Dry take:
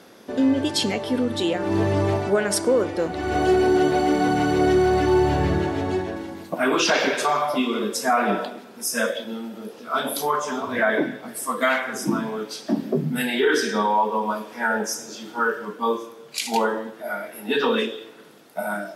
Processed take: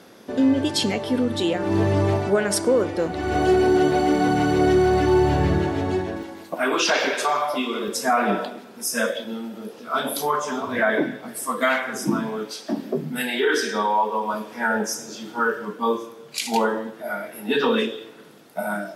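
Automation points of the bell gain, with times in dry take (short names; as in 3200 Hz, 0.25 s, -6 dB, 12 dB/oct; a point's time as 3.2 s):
bell 120 Hz 2 oct
+2.5 dB
from 6.23 s -9 dB
from 7.88 s +1.5 dB
from 12.51 s -7.5 dB
from 14.34 s +4.5 dB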